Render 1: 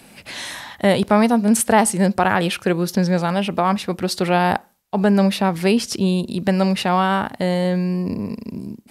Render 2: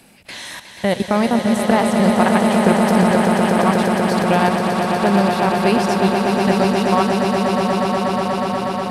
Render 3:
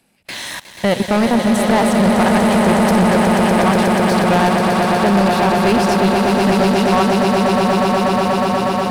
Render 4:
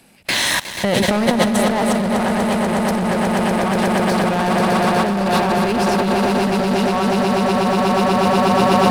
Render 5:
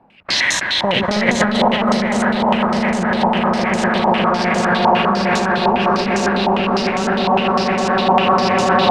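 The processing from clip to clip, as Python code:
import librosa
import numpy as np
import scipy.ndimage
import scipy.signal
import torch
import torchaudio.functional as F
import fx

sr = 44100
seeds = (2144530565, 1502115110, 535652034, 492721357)

y1 = fx.level_steps(x, sr, step_db=17)
y1 = fx.echo_swell(y1, sr, ms=121, loudest=8, wet_db=-7)
y1 = y1 * librosa.db_to_amplitude(1.5)
y2 = fx.leveller(y1, sr, passes=3)
y2 = y2 * librosa.db_to_amplitude(-6.0)
y3 = fx.over_compress(y2, sr, threshold_db=-20.0, ratio=-1.0)
y3 = y3 * librosa.db_to_amplitude(3.5)
y4 = fx.echo_feedback(y3, sr, ms=324, feedback_pct=36, wet_db=-3.5)
y4 = fx.filter_held_lowpass(y4, sr, hz=9.9, low_hz=910.0, high_hz=6800.0)
y4 = y4 * librosa.db_to_amplitude(-3.0)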